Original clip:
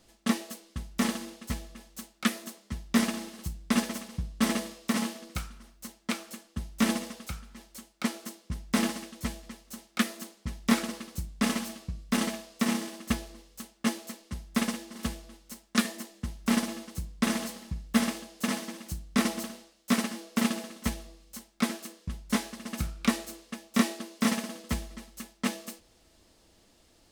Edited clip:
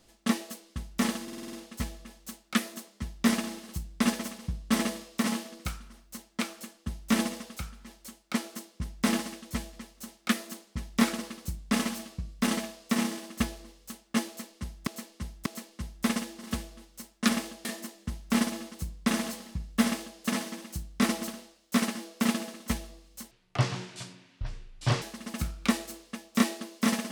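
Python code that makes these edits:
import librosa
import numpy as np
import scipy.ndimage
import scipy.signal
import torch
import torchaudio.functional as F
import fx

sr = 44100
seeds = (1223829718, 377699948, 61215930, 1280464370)

y = fx.edit(x, sr, fx.stutter(start_s=1.23, slice_s=0.05, count=7),
    fx.repeat(start_s=13.98, length_s=0.59, count=3),
    fx.duplicate(start_s=18.0, length_s=0.36, to_s=15.81),
    fx.speed_span(start_s=21.47, length_s=0.94, speed=0.55), tone=tone)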